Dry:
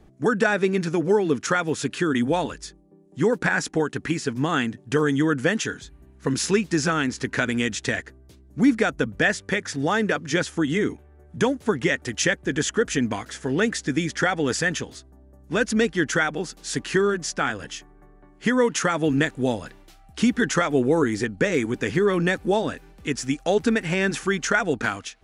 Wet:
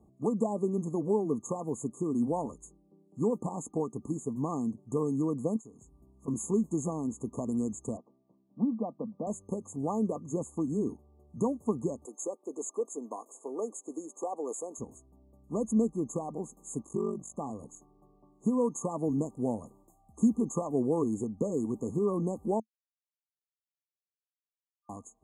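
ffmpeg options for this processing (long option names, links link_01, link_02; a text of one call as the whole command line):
ffmpeg -i in.wav -filter_complex "[0:a]asettb=1/sr,asplit=3[link_01][link_02][link_03];[link_01]atrim=end=5.564[link_04];[link_02]atrim=start=5.56:end=6.28,asetpts=PTS-STARTPTS,afade=type=in:duration=0.004:curve=qsin,afade=type=out:start_time=0.716:duration=0.004:curve=qsin,acompressor=threshold=-40dB:ratio=3:attack=3.2:release=140:knee=1:detection=peak[link_05];[link_03]atrim=start=6.276[link_06];[link_04][link_05]acrossfade=duration=0.004:curve1=hsin:curve2=qsin[link_07];[link_07][link_06]acrossfade=duration=0.004:curve1=qsin:curve2=hsin,asettb=1/sr,asplit=3[link_08][link_09][link_10];[link_08]atrim=end=7.974[link_11];[link_09]atrim=start=7.97:end=9.27,asetpts=PTS-STARTPTS,afade=type=in:duration=0.004:curve=qsin,afade=type=out:start_time=1.296:duration=0.004:curve=qsin,highpass=frequency=180:width=0.5412,highpass=frequency=180:width=1.3066,equalizer=frequency=280:width_type=q:width=4:gain=-5,equalizer=frequency=410:width_type=q:width=4:gain=-9,equalizer=frequency=1400:width_type=q:width=4:gain=-7,lowpass=frequency=2700:width=0.5412,lowpass=frequency=2700:width=1.3066[link_12];[link_10]atrim=start=9.266[link_13];[link_11][link_12]acrossfade=duration=0.004:curve1=hsin:curve2=qsin[link_14];[link_14][link_13]acrossfade=duration=0.004:curve1=qsin:curve2=hsin,asettb=1/sr,asplit=3[link_15][link_16][link_17];[link_15]atrim=end=12.054[link_18];[link_16]atrim=start=12.05:end=14.78,asetpts=PTS-STARTPTS,afade=type=in:duration=0.004:curve=qsin,afade=type=out:start_time=2.726:duration=0.004:curve=qsin,highpass=frequency=360:width=0.5412,highpass=frequency=360:width=1.3066[link_19];[link_17]atrim=start=14.776[link_20];[link_18][link_19]acrossfade=duration=0.004:curve1=hsin:curve2=qsin[link_21];[link_21][link_20]acrossfade=duration=0.004:curve1=qsin:curve2=hsin,asettb=1/sr,asplit=3[link_22][link_23][link_24];[link_22]atrim=end=16.814[link_25];[link_23]atrim=start=16.81:end=17.35,asetpts=PTS-STARTPTS,afade=type=in:duration=0.004:curve=qsin,afade=type=out:start_time=0.536:duration=0.004:curve=qsin,aeval=exprs='val(0)*sin(2*PI*24*n/s)':channel_layout=same[link_26];[link_24]atrim=start=17.346[link_27];[link_25][link_26]acrossfade=duration=0.004:curve1=hsin:curve2=qsin[link_28];[link_28][link_27]acrossfade=duration=0.004:curve1=qsin:curve2=hsin,asplit=3[link_29][link_30][link_31];[link_29]atrim=end=22.6,asetpts=PTS-STARTPTS,afade=type=out:start_time=22.596:duration=0.004:curve=hsin[link_32];[link_30]atrim=start=22.6:end=24.89,asetpts=PTS-STARTPTS,volume=0[link_33];[link_31]atrim=start=24.89,asetpts=PTS-STARTPTS,afade=type=in:duration=0.004:curve=hsin[link_34];[link_32][link_33][link_34]concat=n=3:v=0:a=1,highpass=54,afftfilt=real='re*(1-between(b*sr/4096,1200,6400))':imag='im*(1-between(b*sr/4096,1200,6400))':win_size=4096:overlap=0.75,equalizer=frequency=220:width=4.7:gain=6.5,volume=-9dB" out.wav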